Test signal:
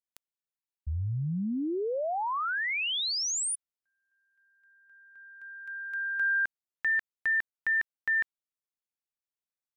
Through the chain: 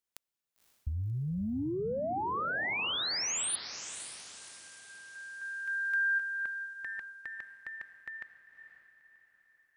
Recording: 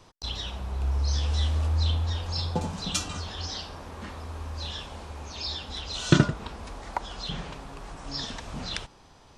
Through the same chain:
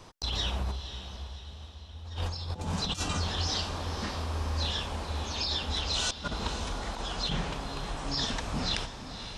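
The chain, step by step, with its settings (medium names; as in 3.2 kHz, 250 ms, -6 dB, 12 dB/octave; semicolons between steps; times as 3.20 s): compressor with a negative ratio -33 dBFS, ratio -0.5; on a send: echo that smears into a reverb 537 ms, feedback 45%, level -10 dB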